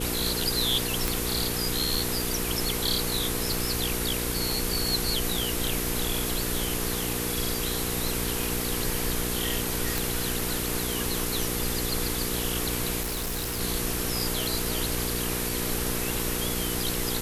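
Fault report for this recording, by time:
hum 60 Hz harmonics 8 -33 dBFS
1.08 s: pop
9.98 s: pop
13.01–13.61 s: clipped -27 dBFS

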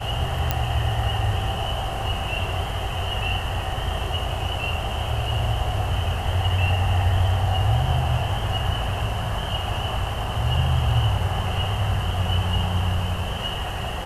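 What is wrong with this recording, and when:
0.51 s: pop -7 dBFS

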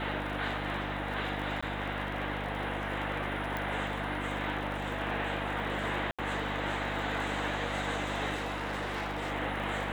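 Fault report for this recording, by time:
crackle 56 per s -39 dBFS
hum 50 Hz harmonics 6 -39 dBFS
1.61–1.62 s: dropout 15 ms
3.57 s: pop -21 dBFS
6.11–6.19 s: dropout 76 ms
8.34–9.32 s: clipped -31 dBFS

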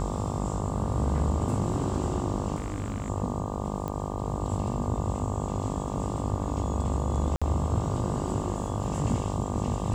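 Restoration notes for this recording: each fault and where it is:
buzz 50 Hz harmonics 24 -33 dBFS
2.56–3.10 s: clipped -27 dBFS
3.88 s: pop -20 dBFS
7.36–7.42 s: dropout 56 ms

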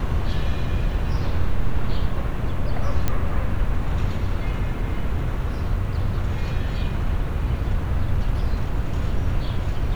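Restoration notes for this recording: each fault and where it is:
3.08 s: pop -8 dBFS

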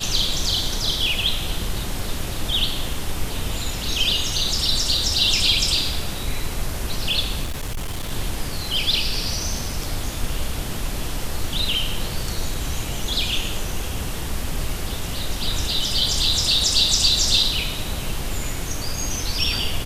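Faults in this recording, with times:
7.43–8.12 s: clipped -23 dBFS

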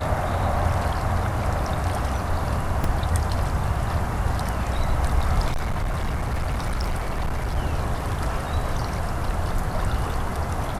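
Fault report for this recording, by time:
2.84 s: dropout 2.2 ms
5.51–7.57 s: clipped -21 dBFS

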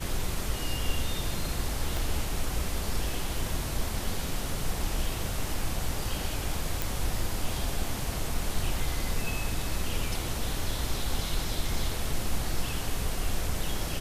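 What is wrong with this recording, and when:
1.97 s: pop
6.82 s: pop

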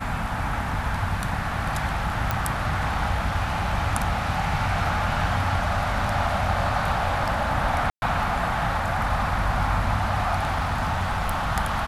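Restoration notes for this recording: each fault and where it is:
2.31 s: pop -9 dBFS
7.90–8.02 s: dropout 120 ms
10.36–11.51 s: clipped -20 dBFS

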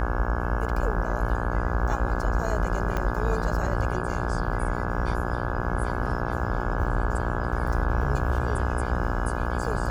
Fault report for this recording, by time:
buzz 60 Hz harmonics 28 -30 dBFS
2.97 s: pop -15 dBFS

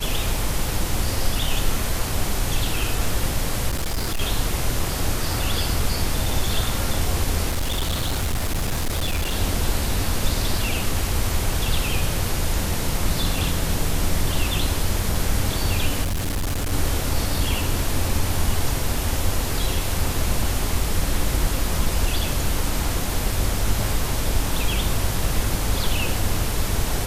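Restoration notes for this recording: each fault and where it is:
3.68–4.21 s: clipped -20 dBFS
7.49–9.36 s: clipped -19 dBFS
16.03–16.73 s: clipped -20.5 dBFS

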